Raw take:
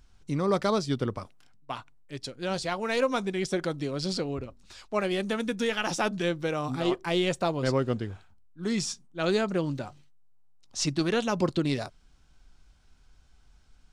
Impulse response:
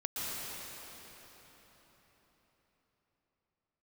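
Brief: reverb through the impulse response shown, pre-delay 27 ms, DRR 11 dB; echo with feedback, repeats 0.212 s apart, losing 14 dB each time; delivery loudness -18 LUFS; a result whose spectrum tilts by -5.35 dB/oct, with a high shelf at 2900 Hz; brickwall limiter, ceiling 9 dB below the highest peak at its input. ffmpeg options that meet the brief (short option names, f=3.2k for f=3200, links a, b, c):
-filter_complex "[0:a]highshelf=f=2.9k:g=-6,alimiter=limit=-23dB:level=0:latency=1,aecho=1:1:212|424:0.2|0.0399,asplit=2[a][b];[1:a]atrim=start_sample=2205,adelay=27[c];[b][c]afir=irnorm=-1:irlink=0,volume=-16dB[d];[a][d]amix=inputs=2:normalize=0,volume=15dB"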